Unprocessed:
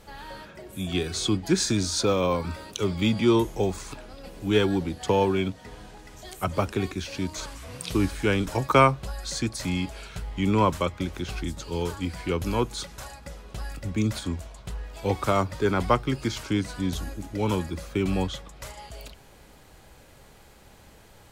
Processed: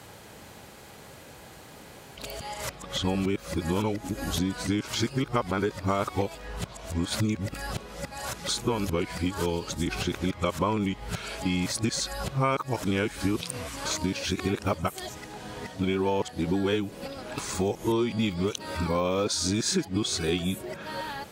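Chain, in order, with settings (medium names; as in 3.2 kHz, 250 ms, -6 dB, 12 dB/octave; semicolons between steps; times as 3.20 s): reverse the whole clip; high-pass 100 Hz 12 dB/octave; compression 6:1, threshold -30 dBFS, peak gain reduction 17 dB; trim +6.5 dB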